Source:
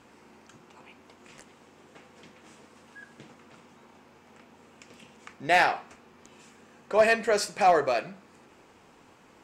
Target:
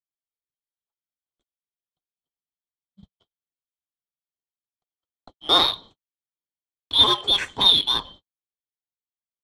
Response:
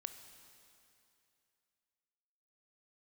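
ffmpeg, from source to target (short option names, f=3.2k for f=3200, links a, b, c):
-filter_complex "[0:a]afftfilt=real='real(if(lt(b,272),68*(eq(floor(b/68),0)*1+eq(floor(b/68),1)*3+eq(floor(b/68),2)*0+eq(floor(b/68),3)*2)+mod(b,68),b),0)':imag='imag(if(lt(b,272),68*(eq(floor(b/68),0)*1+eq(floor(b/68),1)*3+eq(floor(b/68),2)*0+eq(floor(b/68),3)*2)+mod(b,68),b),0)':win_size=2048:overlap=0.75,agate=range=-54dB:threshold=-44dB:ratio=16:detection=peak,acrossover=split=540|1700[a][b][c];[a]acompressor=threshold=-41dB:ratio=8[d];[d][b][c]amix=inputs=3:normalize=0,aphaser=in_gain=1:out_gain=1:delay=2.8:decay=0.27:speed=1.7:type=sinusoidal,asplit=2[e][f];[f]adynamicsmooth=sensitivity=5:basefreq=890,volume=2dB[g];[e][g]amix=inputs=2:normalize=0,aemphasis=mode=reproduction:type=50fm"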